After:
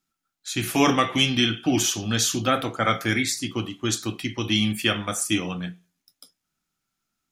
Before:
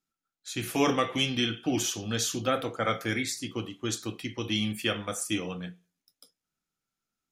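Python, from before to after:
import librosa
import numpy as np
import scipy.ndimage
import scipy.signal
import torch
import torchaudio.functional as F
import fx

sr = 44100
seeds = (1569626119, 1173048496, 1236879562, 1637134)

y = fx.peak_eq(x, sr, hz=480.0, db=-7.5, octaves=0.41)
y = y * librosa.db_to_amplitude(7.0)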